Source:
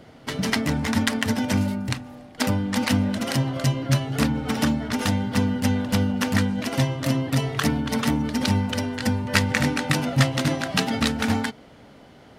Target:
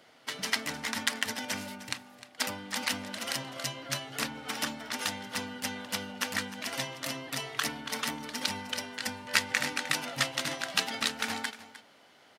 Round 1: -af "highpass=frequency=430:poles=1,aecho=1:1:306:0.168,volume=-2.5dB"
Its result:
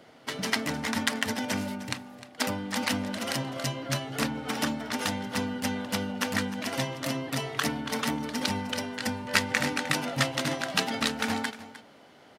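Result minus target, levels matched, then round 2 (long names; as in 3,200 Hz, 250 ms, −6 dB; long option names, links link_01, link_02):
500 Hz band +4.5 dB
-af "highpass=frequency=1500:poles=1,aecho=1:1:306:0.168,volume=-2.5dB"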